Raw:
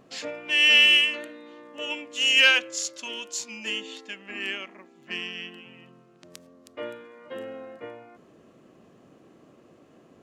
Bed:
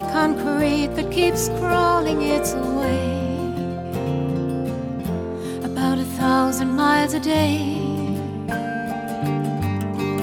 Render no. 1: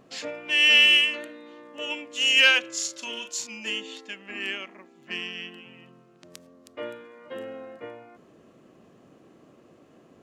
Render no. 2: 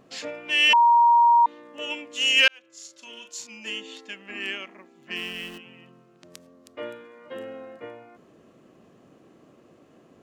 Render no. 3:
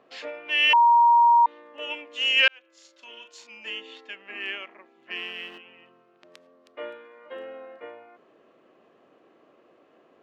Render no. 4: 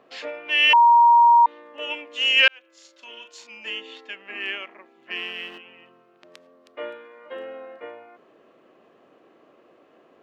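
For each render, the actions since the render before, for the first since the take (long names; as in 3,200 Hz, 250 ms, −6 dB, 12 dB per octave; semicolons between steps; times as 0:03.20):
0:02.60–0:03.47: double-tracking delay 39 ms −7.5 dB
0:00.73–0:01.46: beep over 943 Hz −13 dBFS; 0:02.48–0:04.15: fade in; 0:05.16–0:05.58: converter with a step at zero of −41 dBFS
three-way crossover with the lows and the highs turned down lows −18 dB, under 340 Hz, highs −19 dB, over 4,000 Hz
level +3 dB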